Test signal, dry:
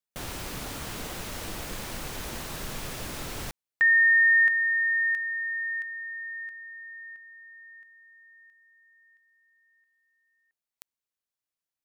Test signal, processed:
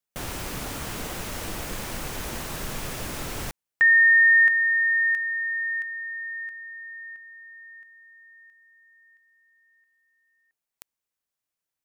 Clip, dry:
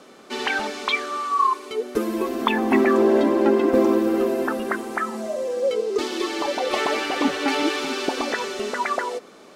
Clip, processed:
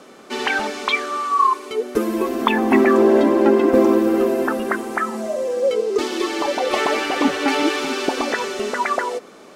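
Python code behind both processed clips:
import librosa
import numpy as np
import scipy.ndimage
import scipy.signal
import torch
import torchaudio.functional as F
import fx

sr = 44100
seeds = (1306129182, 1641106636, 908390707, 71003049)

y = fx.peak_eq(x, sr, hz=4000.0, db=-2.5, octaves=0.77)
y = y * 10.0 ** (3.5 / 20.0)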